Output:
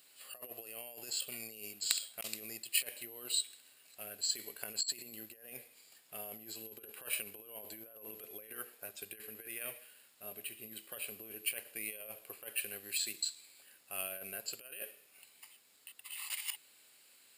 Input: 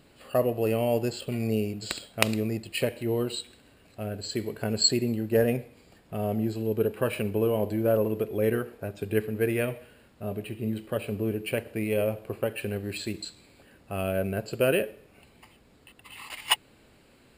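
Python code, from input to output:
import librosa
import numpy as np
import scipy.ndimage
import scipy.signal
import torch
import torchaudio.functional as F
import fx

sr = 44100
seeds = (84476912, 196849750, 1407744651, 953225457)

y = fx.over_compress(x, sr, threshold_db=-29.0, ratio=-0.5)
y = np.diff(y, prepend=0.0)
y = F.gain(torch.from_numpy(y), 2.5).numpy()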